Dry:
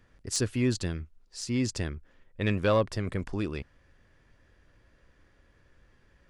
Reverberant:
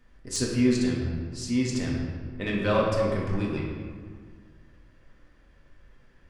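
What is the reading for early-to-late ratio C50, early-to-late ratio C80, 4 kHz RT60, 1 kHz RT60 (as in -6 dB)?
1.0 dB, 3.0 dB, 1.1 s, 1.9 s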